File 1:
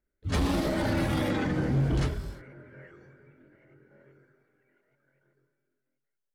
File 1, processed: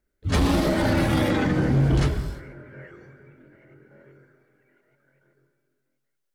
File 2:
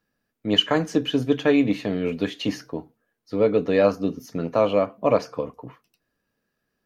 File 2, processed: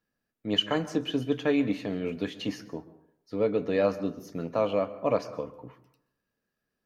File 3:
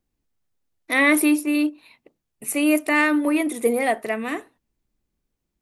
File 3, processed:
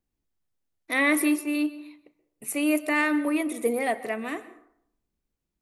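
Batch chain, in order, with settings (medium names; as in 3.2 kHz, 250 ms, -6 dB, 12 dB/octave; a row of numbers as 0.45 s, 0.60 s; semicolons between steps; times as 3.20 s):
plate-style reverb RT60 0.69 s, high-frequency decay 0.5×, pre-delay 115 ms, DRR 15.5 dB; peak normalisation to -12 dBFS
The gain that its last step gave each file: +6.0 dB, -6.5 dB, -5.0 dB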